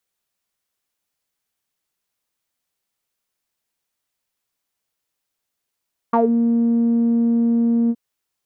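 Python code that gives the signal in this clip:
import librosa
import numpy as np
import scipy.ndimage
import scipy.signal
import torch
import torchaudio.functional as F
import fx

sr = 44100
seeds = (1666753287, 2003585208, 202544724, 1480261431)

y = fx.sub_voice(sr, note=58, wave='saw', cutoff_hz=300.0, q=6.9, env_oct=2.0, env_s=0.16, attack_ms=7.2, decay_s=0.12, sustain_db=-4.0, release_s=0.05, note_s=1.77, slope=12)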